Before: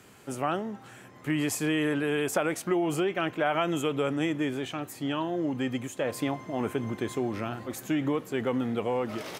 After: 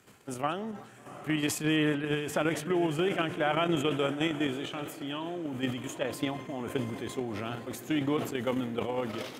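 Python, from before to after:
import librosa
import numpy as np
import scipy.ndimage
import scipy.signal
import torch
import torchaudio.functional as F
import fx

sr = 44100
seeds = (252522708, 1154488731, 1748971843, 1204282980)

y = fx.echo_diffused(x, sr, ms=751, feedback_pct=50, wet_db=-13.5)
y = fx.level_steps(y, sr, step_db=9)
y = fx.bass_treble(y, sr, bass_db=4, treble_db=-6, at=(1.58, 3.91))
y = fx.echo_feedback(y, sr, ms=183, feedback_pct=57, wet_db=-22.5)
y = fx.dynamic_eq(y, sr, hz=3300.0, q=1.9, threshold_db=-55.0, ratio=4.0, max_db=6)
y = fx.sustainer(y, sr, db_per_s=89.0)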